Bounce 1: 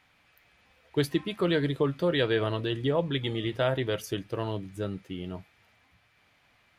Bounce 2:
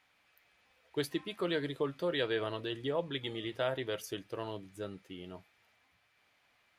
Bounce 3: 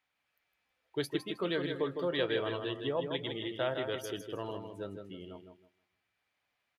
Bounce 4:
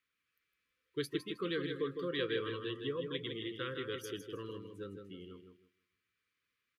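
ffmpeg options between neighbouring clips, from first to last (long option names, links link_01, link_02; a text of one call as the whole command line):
ffmpeg -i in.wav -af "bass=frequency=250:gain=-8,treble=frequency=4000:gain=2,volume=-6dB" out.wav
ffmpeg -i in.wav -af "aecho=1:1:158|316|474|632|790:0.501|0.195|0.0762|0.0297|0.0116,afftdn=noise_reduction=12:noise_floor=-50" out.wav
ffmpeg -i in.wav -af "asuperstop=centerf=740:order=12:qfactor=1.4,volume=-3dB" out.wav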